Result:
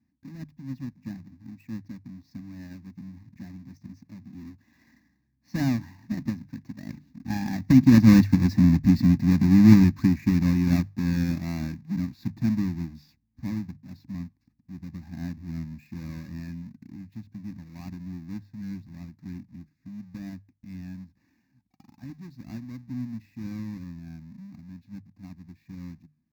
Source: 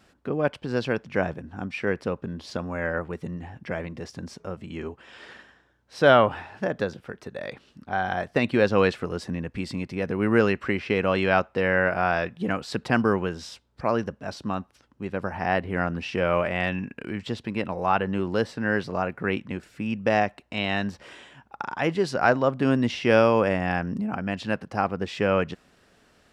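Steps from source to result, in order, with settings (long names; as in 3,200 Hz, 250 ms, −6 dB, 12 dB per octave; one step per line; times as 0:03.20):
each half-wave held at its own peak
source passing by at 0:08.75, 27 m/s, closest 16 metres
high-pass filter 64 Hz
parametric band 1,600 Hz +7.5 dB 0.3 octaves
mains-hum notches 50/100/150 Hz
tempo change 1×
low shelf with overshoot 400 Hz +13 dB, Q 3
phaser with its sweep stopped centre 2,100 Hz, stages 8
level −4 dB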